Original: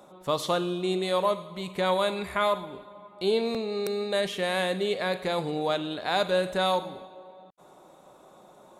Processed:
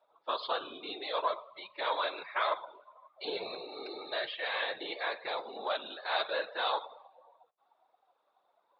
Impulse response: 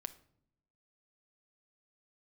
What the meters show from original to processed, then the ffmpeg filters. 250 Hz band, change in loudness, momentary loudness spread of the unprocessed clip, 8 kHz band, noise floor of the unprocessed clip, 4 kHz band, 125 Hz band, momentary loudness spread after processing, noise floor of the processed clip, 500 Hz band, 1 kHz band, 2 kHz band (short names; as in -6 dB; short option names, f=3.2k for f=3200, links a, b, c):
-19.0 dB, -7.5 dB, 7 LU, under -35 dB, -54 dBFS, -4.5 dB, under -30 dB, 10 LU, -76 dBFS, -11.0 dB, -5.0 dB, -3.5 dB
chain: -filter_complex "[0:a]aeval=exprs='if(lt(val(0),0),0.708*val(0),val(0))':c=same,asplit=2[a][b];[b]highshelf=f=2.5k:g=-2[c];[1:a]atrim=start_sample=2205,asetrate=61740,aresample=44100,highshelf=f=2.3k:g=-8[d];[c][d]afir=irnorm=-1:irlink=0,volume=7dB[e];[a][e]amix=inputs=2:normalize=0,aresample=11025,aresample=44100,highpass=910,afftfilt=real='hypot(re,im)*cos(2*PI*random(0))':imag='hypot(re,im)*sin(2*PI*random(1))':win_size=512:overlap=0.75,afftdn=nr=15:nf=-47"